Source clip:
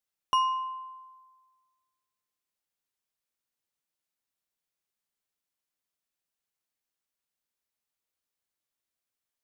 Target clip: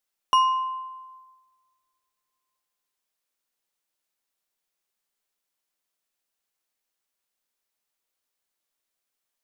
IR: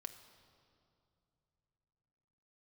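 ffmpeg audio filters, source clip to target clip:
-filter_complex "[0:a]equalizer=frequency=96:width_type=o:width=2.4:gain=-10.5,asplit=2[link_01][link_02];[1:a]atrim=start_sample=2205,lowpass=1300[link_03];[link_02][link_03]afir=irnorm=-1:irlink=0,volume=-10.5dB[link_04];[link_01][link_04]amix=inputs=2:normalize=0,volume=5.5dB"

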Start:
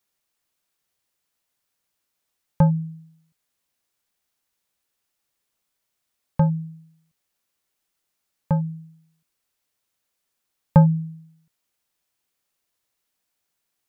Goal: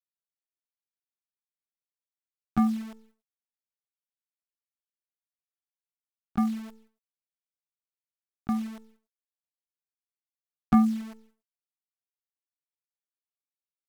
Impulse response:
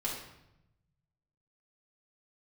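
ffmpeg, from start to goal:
-af "acrusher=bits=7:dc=4:mix=0:aa=0.000001,agate=range=-33dB:threshold=-48dB:ratio=3:detection=peak,asetrate=60591,aresample=44100,atempo=0.727827,volume=-7dB"

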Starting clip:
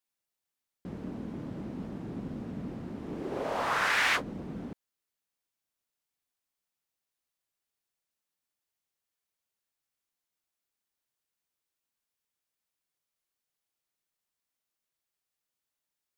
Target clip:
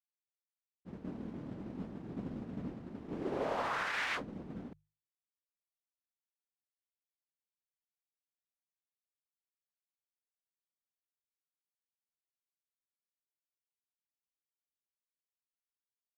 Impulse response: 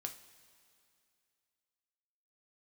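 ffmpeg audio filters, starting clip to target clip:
-af "highshelf=frequency=8300:gain=-11,alimiter=level_in=3dB:limit=-24dB:level=0:latency=1:release=67,volume=-3dB,agate=range=-33dB:threshold=-31dB:ratio=3:detection=peak,bandreject=frequency=50:width_type=h:width=6,bandreject=frequency=100:width_type=h:width=6,bandreject=frequency=150:width_type=h:width=6,volume=3.5dB"

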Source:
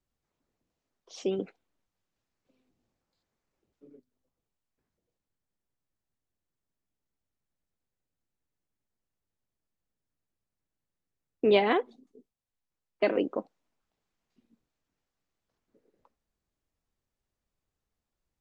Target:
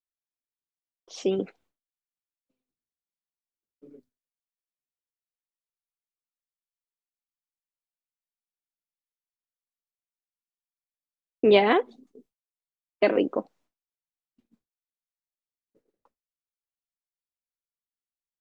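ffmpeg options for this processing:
ffmpeg -i in.wav -af "agate=range=-33dB:threshold=-60dB:ratio=3:detection=peak,volume=4.5dB" out.wav

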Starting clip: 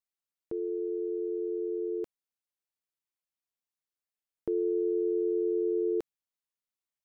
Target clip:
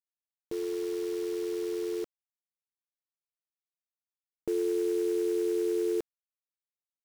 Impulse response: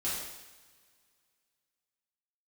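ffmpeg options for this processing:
-af "acrusher=bits=8:dc=4:mix=0:aa=0.000001"

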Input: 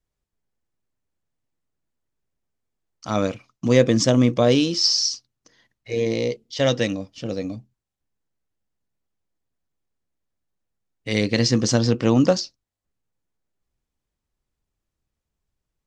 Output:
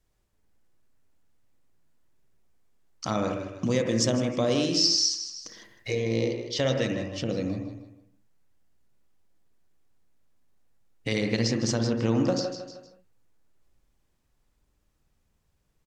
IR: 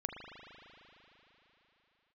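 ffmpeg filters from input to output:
-filter_complex "[0:a]aecho=1:1:156|312|468:0.168|0.042|0.0105,acompressor=threshold=-39dB:ratio=2.5,asettb=1/sr,asplit=3[link_01][link_02][link_03];[link_01]atrim=end=3.684[link_04];[link_02]atrim=start=3.68:end=5.95,asetpts=PTS-STARTPTS,afade=type=in:duration=0.004:curve=qsin,afade=type=out:start_time=2.266:duration=0.004:curve=qsin,highshelf=frequency=6700:gain=10[link_05];[link_03]atrim=start=5.946[link_06];[link_04][link_05]acrossfade=duration=0.004:curve1=hsin:curve2=qsin[link_07];[link_07][link_06]acrossfade=duration=0.004:curve1=qsin:curve2=hsin[link_08];[1:a]atrim=start_sample=2205,afade=type=out:start_time=0.2:duration=0.01,atrim=end_sample=9261,asetrate=31752,aresample=44100[link_09];[link_08][link_09]afir=irnorm=-1:irlink=0,volume=7.5dB"

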